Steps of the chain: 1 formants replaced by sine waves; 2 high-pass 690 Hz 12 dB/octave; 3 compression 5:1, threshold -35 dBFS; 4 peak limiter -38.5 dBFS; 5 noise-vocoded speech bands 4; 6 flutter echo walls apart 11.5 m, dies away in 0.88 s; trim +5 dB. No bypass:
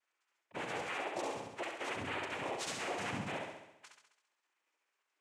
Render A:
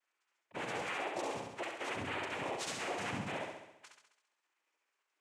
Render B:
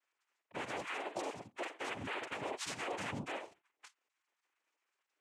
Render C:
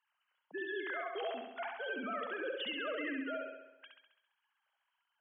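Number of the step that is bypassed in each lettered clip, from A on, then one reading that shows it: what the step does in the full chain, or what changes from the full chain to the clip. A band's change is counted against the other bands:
3, mean gain reduction 3.0 dB; 6, echo-to-direct -2.5 dB to none; 5, crest factor change -2.5 dB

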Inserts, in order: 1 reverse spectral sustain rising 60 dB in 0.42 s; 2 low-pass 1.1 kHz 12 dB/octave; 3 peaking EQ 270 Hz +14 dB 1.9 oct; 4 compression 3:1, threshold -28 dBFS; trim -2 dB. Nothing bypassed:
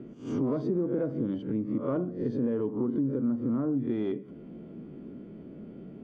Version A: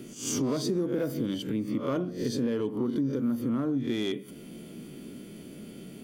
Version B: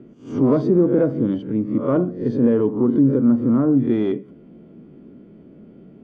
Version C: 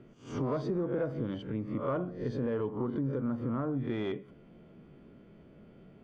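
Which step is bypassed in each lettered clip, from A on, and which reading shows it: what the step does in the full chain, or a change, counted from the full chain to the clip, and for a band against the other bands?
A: 2, 1 kHz band +3.0 dB; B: 4, mean gain reduction 7.0 dB; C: 3, 1 kHz band +6.0 dB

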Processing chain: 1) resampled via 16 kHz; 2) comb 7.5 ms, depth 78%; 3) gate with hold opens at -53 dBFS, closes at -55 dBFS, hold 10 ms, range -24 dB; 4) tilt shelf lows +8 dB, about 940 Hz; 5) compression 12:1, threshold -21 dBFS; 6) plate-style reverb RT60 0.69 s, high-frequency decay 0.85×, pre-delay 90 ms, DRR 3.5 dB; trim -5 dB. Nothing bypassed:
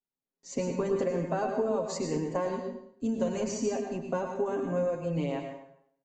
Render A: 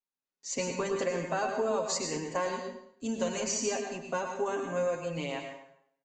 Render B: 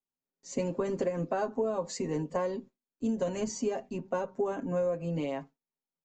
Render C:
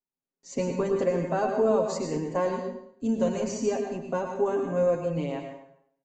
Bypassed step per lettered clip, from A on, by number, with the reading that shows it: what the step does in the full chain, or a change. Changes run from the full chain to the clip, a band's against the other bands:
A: 4, 125 Hz band -10.0 dB; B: 6, momentary loudness spread change -2 LU; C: 5, mean gain reduction 2.0 dB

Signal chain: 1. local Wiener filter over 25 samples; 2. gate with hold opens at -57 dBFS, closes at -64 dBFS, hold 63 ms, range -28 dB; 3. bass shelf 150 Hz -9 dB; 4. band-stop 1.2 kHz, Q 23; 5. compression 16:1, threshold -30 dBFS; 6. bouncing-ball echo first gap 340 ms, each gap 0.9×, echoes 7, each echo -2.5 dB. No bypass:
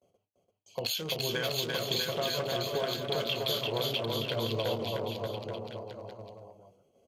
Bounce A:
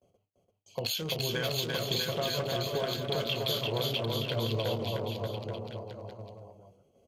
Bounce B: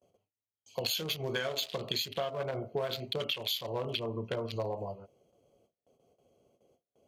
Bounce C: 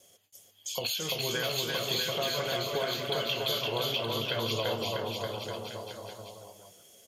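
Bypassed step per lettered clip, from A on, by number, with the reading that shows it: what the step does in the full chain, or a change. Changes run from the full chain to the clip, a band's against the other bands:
3, 125 Hz band +4.5 dB; 6, momentary loudness spread change -9 LU; 1, 8 kHz band +3.0 dB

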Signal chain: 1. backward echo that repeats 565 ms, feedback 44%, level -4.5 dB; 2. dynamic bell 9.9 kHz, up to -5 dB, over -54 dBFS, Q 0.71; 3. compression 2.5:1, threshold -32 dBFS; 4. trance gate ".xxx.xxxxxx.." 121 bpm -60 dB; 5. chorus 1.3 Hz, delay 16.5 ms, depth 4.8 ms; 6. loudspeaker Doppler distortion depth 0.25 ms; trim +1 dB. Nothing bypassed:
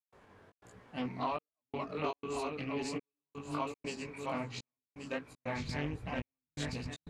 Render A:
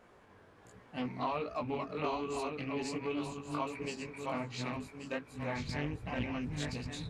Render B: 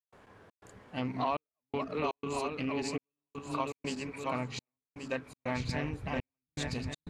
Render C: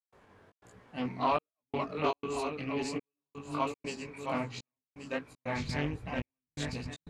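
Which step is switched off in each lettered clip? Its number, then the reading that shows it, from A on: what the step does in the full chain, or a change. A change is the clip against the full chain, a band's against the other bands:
4, crest factor change -1.5 dB; 5, loudness change +3.0 LU; 3, loudness change +4.0 LU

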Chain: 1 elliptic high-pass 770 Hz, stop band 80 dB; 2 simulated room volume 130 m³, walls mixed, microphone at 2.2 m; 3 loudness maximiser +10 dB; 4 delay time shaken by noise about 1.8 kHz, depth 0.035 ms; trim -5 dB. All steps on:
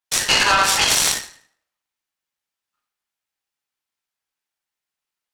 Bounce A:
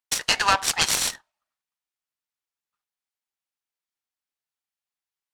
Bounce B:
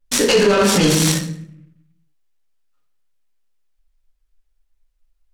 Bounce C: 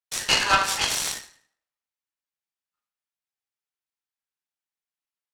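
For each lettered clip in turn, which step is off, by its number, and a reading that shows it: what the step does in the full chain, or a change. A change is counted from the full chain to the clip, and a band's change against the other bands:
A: 2, momentary loudness spread change -1 LU; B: 1, 250 Hz band +20.5 dB; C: 3, crest factor change +6.5 dB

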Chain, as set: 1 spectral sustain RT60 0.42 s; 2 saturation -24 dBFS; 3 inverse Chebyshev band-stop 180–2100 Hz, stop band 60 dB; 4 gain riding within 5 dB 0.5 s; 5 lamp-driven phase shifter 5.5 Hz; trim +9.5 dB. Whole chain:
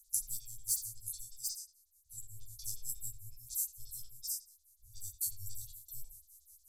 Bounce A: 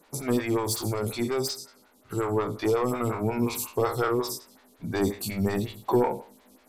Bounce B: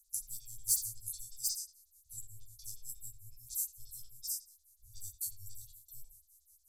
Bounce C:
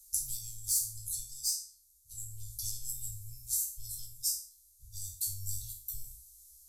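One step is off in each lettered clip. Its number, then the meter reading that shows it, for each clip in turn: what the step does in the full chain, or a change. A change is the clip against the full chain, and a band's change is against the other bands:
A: 3, crest factor change -9.5 dB; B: 4, loudness change +1.5 LU; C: 5, crest factor change -1.5 dB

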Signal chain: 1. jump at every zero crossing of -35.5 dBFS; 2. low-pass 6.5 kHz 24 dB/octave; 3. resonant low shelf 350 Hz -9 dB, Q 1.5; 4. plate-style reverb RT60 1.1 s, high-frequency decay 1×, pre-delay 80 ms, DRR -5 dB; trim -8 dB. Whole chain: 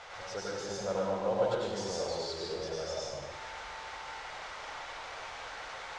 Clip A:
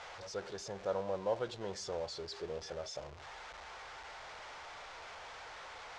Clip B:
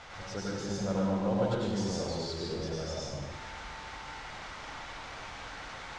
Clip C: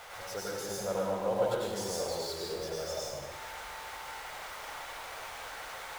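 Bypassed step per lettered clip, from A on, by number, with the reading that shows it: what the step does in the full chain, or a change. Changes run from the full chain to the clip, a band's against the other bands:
4, loudness change -6.0 LU; 3, 125 Hz band +10.5 dB; 2, 8 kHz band +4.0 dB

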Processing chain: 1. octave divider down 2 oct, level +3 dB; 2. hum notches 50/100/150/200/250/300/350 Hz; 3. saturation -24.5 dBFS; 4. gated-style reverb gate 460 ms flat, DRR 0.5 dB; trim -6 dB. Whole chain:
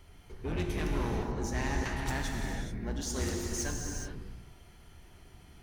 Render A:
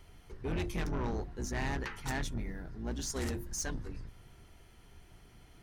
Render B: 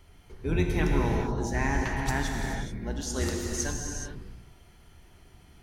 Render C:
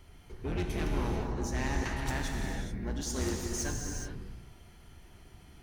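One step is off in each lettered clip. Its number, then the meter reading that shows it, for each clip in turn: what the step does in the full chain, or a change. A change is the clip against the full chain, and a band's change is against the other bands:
4, momentary loudness spread change -2 LU; 3, distortion -8 dB; 2, momentary loudness spread change +2 LU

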